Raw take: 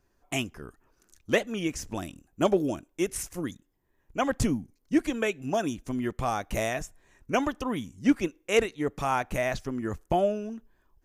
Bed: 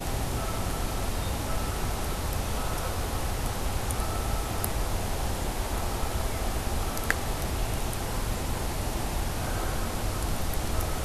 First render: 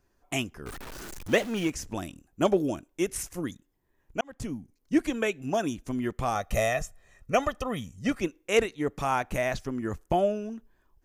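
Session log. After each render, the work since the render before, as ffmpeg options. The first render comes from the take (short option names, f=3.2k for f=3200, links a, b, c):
-filter_complex "[0:a]asettb=1/sr,asplit=3[a][b][c];[a]atrim=end=0.664[d];[b]atrim=start=0.66:end=1.7,asetpts=PTS-STARTPTS,afade=t=in:d=0.004:c=qsin,afade=t=out:st=1.036:d=0.004:c=qsin,aeval=exprs='val(0)+0.5*0.0178*sgn(val(0))':c=same[e];[c]atrim=start=1.696[f];[d][e]acrossfade=d=0.004:c1=hsin:c2=qsin[g];[g][f]acrossfade=d=0.004:c1=qsin:c2=hsin,asettb=1/sr,asplit=3[h][i][j];[h]atrim=end=6.354[k];[i]atrim=start=6.35:end=8.18,asetpts=PTS-STARTPTS,afade=t=in:d=0.004:c=qsin,afade=t=out:st=1.826:d=0.004:c=qsin,aecho=1:1:1.6:0.65,atrim=end_sample=80703[l];[j]atrim=start=8.176[m];[k][l]acrossfade=d=0.004:c1=hsin:c2=qsin[n];[n][m]acrossfade=d=0.004:c1=qsin:c2=hsin,asplit=2[o][p];[o]atrim=end=4.21,asetpts=PTS-STARTPTS,afade=t=out:st=4.206:d=0.004:c=hsin[q];[p]atrim=start=4.21,asetpts=PTS-STARTPTS,afade=t=in:d=0.72[r];[q][r]concat=n=2:v=0:a=1"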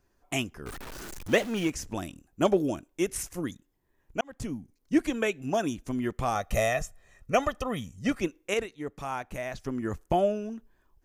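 -filter_complex "[0:a]asplit=3[a][b][c];[a]atrim=end=8.542[d];[b]atrim=start=8.538:end=9.642,asetpts=PTS-STARTPTS,volume=-7dB[e];[c]atrim=start=9.638[f];[d][e]acrossfade=d=0.004:c1=hsin:c2=hsin[g];[g][f]acrossfade=d=0.004:c1=hsin:c2=hsin"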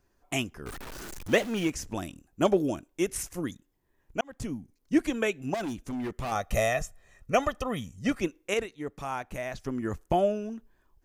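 -filter_complex "[0:a]asettb=1/sr,asplit=3[a][b][c];[a]atrim=end=5.544[d];[b]atrim=start=5.54:end=6.32,asetpts=PTS-STARTPTS,afade=t=in:d=0.004:c=qsin,afade=t=out:st=0.776:d=0.004:c=qsin,volume=30dB,asoftclip=hard,volume=-30dB[e];[c]atrim=start=6.316[f];[d][e]acrossfade=d=0.004:c1=hsin:c2=qsin[g];[g][f]acrossfade=d=0.004:c1=qsin:c2=hsin"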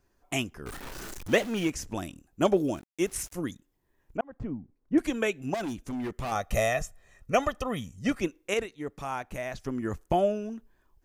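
-filter_complex "[0:a]asettb=1/sr,asplit=3[a][b][c];[a]atrim=end=0.724[d];[b]atrim=start=0.72:end=1.2,asetpts=PTS-STARTPTS,afade=t=in:d=0.004:c=qsin,afade=t=out:st=0.476:d=0.004:c=qsin,asplit=2[e][f];[f]adelay=32,volume=-6dB[g];[e][g]amix=inputs=2:normalize=0,atrim=end_sample=21168[h];[c]atrim=start=1.196[i];[d][h]acrossfade=d=0.004:c1=hsin:c2=qsin[j];[j][i]acrossfade=d=0.004:c1=qsin:c2=hsin,asettb=1/sr,asplit=3[k][l][m];[k]atrim=end=2.534[n];[l]atrim=start=2.53:end=3.33,asetpts=PTS-STARTPTS,afade=t=in:d=0.004:c=qsin,afade=t=out:st=0.796:d=0.004:c=qsin,aeval=exprs='val(0)*gte(abs(val(0)),0.00335)':c=same[o];[m]atrim=start=3.326[p];[n][o]acrossfade=d=0.004:c1=hsin:c2=qsin[q];[q][p]acrossfade=d=0.004:c1=qsin:c2=hsin,asettb=1/sr,asplit=3[r][s][t];[r]atrim=end=4.174[u];[s]atrim=start=4.17:end=4.98,asetpts=PTS-STARTPTS,afade=t=in:d=0.004:c=qsin,afade=t=out:st=0.806:d=0.004:c=qsin,lowpass=1.3k[v];[t]atrim=start=4.976[w];[u][v]acrossfade=d=0.004:c1=hsin:c2=qsin[x];[x][w]acrossfade=d=0.004:c1=qsin:c2=hsin"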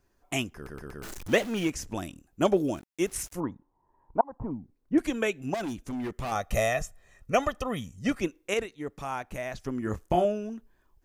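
-filter_complex "[0:a]asettb=1/sr,asplit=3[a][b][c];[a]atrim=end=3.404[d];[b]atrim=start=3.4:end=4.51,asetpts=PTS-STARTPTS,afade=t=in:d=0.004:c=qsin,afade=t=out:st=1.106:d=0.004:c=qsin,lowpass=f=940:t=q:w=9.3[e];[c]atrim=start=4.506[f];[d][e]acrossfade=d=0.004:c1=hsin:c2=qsin[g];[g][f]acrossfade=d=0.004:c1=qsin:c2=hsin,asettb=1/sr,asplit=3[h][i][j];[h]atrim=end=9.844[k];[i]atrim=start=9.84:end=10.25,asetpts=PTS-STARTPTS,afade=t=in:d=0.004:c=qsin,afade=t=out:st=0.406:d=0.004:c=qsin,asplit=2[l][m];[m]adelay=28,volume=-6.5dB[n];[l][n]amix=inputs=2:normalize=0,atrim=end_sample=18081[o];[j]atrim=start=10.246[p];[k][o]acrossfade=d=0.004:c1=hsin:c2=qsin[q];[q][p]acrossfade=d=0.004:c1=qsin:c2=hsin,asplit=5[r][s][t][u][v];[r]atrim=end=0.672[w];[s]atrim=start=0.548:end=0.672[x];[t]atrim=start=0.548:end=0.672[y];[u]atrim=start=0.548:end=0.672[z];[v]atrim=start=1.028[aa];[w][x]acrossfade=d=0.004:c1=hsin:c2=hsin[ab];[ab][y]acrossfade=d=0.004:c1=hsin:c2=hsin[ac];[ac][z]acrossfade=d=0.004:c1=hsin:c2=hsin[ad];[ad][aa]acrossfade=d=0.004:c1=hsin:c2=hsin"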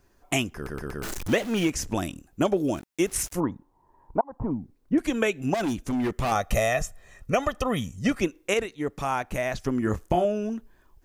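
-filter_complex "[0:a]asplit=2[a][b];[b]alimiter=limit=-16.5dB:level=0:latency=1:release=475,volume=2.5dB[c];[a][c]amix=inputs=2:normalize=0,acompressor=threshold=-21dB:ratio=2.5"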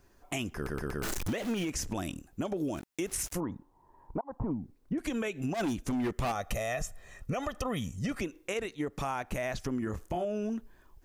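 -af "alimiter=limit=-21dB:level=0:latency=1:release=82,acompressor=threshold=-29dB:ratio=6"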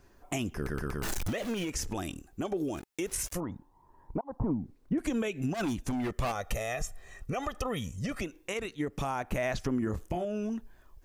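-af "aphaser=in_gain=1:out_gain=1:delay=2.6:decay=0.3:speed=0.21:type=sinusoidal"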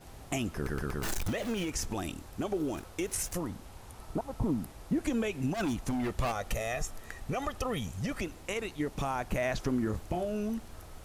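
-filter_complex "[1:a]volume=-19.5dB[a];[0:a][a]amix=inputs=2:normalize=0"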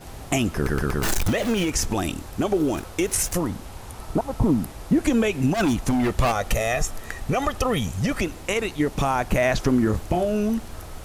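-af "volume=10.5dB"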